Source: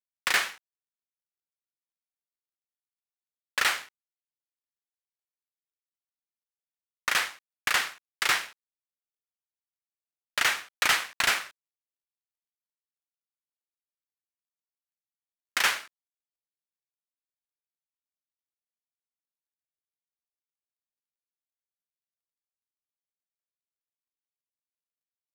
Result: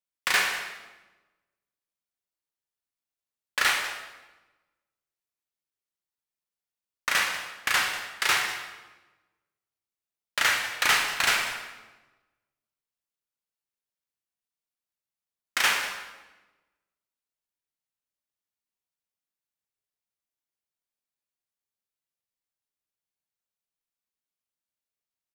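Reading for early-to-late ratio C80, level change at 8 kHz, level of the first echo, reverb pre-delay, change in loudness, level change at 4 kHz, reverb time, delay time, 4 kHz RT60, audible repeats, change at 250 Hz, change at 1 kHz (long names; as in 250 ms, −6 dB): 6.5 dB, +2.0 dB, −15.0 dB, 20 ms, +1.5 dB, +2.0 dB, 1.1 s, 193 ms, 0.90 s, 1, +2.5 dB, +2.5 dB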